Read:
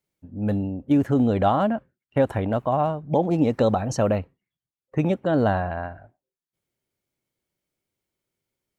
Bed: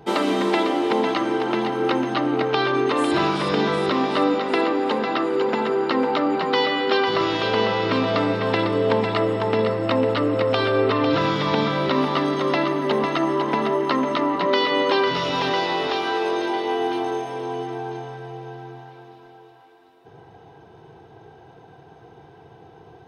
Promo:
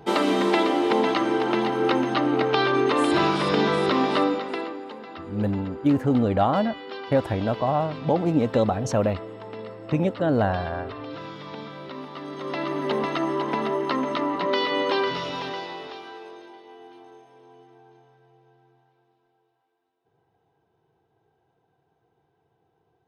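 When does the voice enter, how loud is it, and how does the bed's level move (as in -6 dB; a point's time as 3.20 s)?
4.95 s, -1.0 dB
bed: 4.15 s -0.5 dB
4.92 s -16.5 dB
12.14 s -16.5 dB
12.79 s -4 dB
15.03 s -4 dB
16.62 s -23 dB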